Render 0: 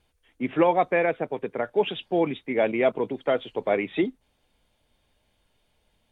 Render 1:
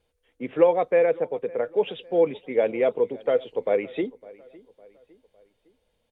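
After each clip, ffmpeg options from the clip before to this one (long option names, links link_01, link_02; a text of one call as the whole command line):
ffmpeg -i in.wav -filter_complex "[0:a]equalizer=frequency=490:width_type=o:width=0.38:gain=13,asplit=2[link_01][link_02];[link_02]adelay=557,lowpass=frequency=3300:poles=1,volume=-22dB,asplit=2[link_03][link_04];[link_04]adelay=557,lowpass=frequency=3300:poles=1,volume=0.46,asplit=2[link_05][link_06];[link_06]adelay=557,lowpass=frequency=3300:poles=1,volume=0.46[link_07];[link_01][link_03][link_05][link_07]amix=inputs=4:normalize=0,volume=-5.5dB" out.wav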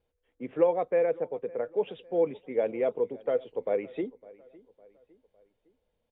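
ffmpeg -i in.wav -af "highshelf=frequency=2500:gain=-10.5,volume=-5dB" out.wav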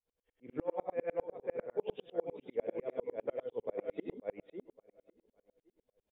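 ffmpeg -i in.wav -filter_complex "[0:a]asplit=2[link_01][link_02];[link_02]aecho=0:1:65|102|118|548:0.376|0.473|0.562|0.631[link_03];[link_01][link_03]amix=inputs=2:normalize=0,alimiter=limit=-20.5dB:level=0:latency=1:release=231,aeval=exprs='val(0)*pow(10,-37*if(lt(mod(-10*n/s,1),2*abs(-10)/1000),1-mod(-10*n/s,1)/(2*abs(-10)/1000),(mod(-10*n/s,1)-2*abs(-10)/1000)/(1-2*abs(-10)/1000))/20)':channel_layout=same" out.wav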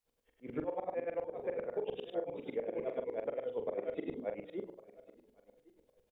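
ffmpeg -i in.wav -filter_complex "[0:a]bandreject=frequency=60:width_type=h:width=6,bandreject=frequency=120:width_type=h:width=6,bandreject=frequency=180:width_type=h:width=6,bandreject=frequency=240:width_type=h:width=6,bandreject=frequency=300:width_type=h:width=6,bandreject=frequency=360:width_type=h:width=6,bandreject=frequency=420:width_type=h:width=6,bandreject=frequency=480:width_type=h:width=6,bandreject=frequency=540:width_type=h:width=6,acompressor=threshold=-40dB:ratio=6,asplit=2[link_01][link_02];[link_02]adelay=44,volume=-8dB[link_03];[link_01][link_03]amix=inputs=2:normalize=0,volume=6.5dB" out.wav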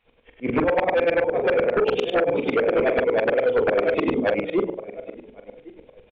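ffmpeg -i in.wav -af "aresample=8000,aresample=44100,aeval=exprs='0.0668*sin(PI/2*2.82*val(0)/0.0668)':channel_layout=same,equalizer=frequency=2400:width_type=o:width=0.28:gain=7.5,volume=8.5dB" out.wav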